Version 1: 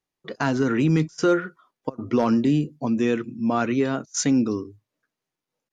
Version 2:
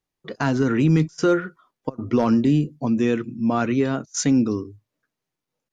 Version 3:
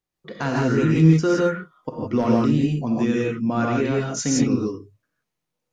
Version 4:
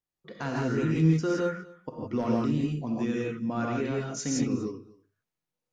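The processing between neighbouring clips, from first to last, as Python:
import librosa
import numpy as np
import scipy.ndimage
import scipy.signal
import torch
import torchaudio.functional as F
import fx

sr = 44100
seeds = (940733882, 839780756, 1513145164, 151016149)

y1 = fx.low_shelf(x, sr, hz=140.0, db=7.5)
y2 = fx.rev_gated(y1, sr, seeds[0], gate_ms=190, shape='rising', drr_db=-3.0)
y2 = F.gain(torch.from_numpy(y2), -3.5).numpy()
y3 = y2 + 10.0 ** (-22.0 / 20.0) * np.pad(y2, (int(245 * sr / 1000.0), 0))[:len(y2)]
y3 = F.gain(torch.from_numpy(y3), -8.0).numpy()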